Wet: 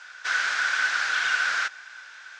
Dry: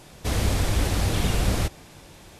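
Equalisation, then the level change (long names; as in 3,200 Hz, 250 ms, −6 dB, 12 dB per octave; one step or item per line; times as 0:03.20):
high-pass with resonance 1,500 Hz, resonance Q 13
low-pass with resonance 6,300 Hz, resonance Q 1.9
high-frequency loss of the air 91 metres
0.0 dB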